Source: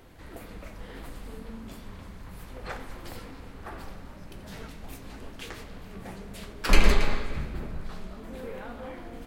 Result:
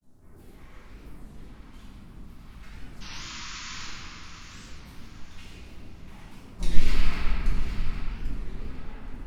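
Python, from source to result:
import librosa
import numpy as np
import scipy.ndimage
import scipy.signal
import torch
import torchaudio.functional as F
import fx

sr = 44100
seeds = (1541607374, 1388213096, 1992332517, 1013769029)

p1 = fx.peak_eq(x, sr, hz=500.0, db=-12.0, octaves=0.3)
p2 = fx.quant_companded(p1, sr, bits=4)
p3 = p1 + (p2 * librosa.db_to_amplitude(-10.0))
p4 = fx.phaser_stages(p3, sr, stages=2, low_hz=220.0, high_hz=3100.0, hz=1.1, feedback_pct=35)
p5 = fx.granulator(p4, sr, seeds[0], grain_ms=100.0, per_s=20.0, spray_ms=100.0, spread_st=3)
p6 = fx.spec_paint(p5, sr, seeds[1], shape='noise', start_s=3.03, length_s=0.84, low_hz=940.0, high_hz=7200.0, level_db=-32.0)
p7 = p6 + fx.echo_feedback(p6, sr, ms=809, feedback_pct=33, wet_db=-10, dry=0)
p8 = fx.room_shoebox(p7, sr, seeds[2], volume_m3=200.0, walls='hard', distance_m=1.4)
p9 = fx.record_warp(p8, sr, rpm=33.33, depth_cents=250.0)
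y = p9 * librosa.db_to_amplitude(-15.5)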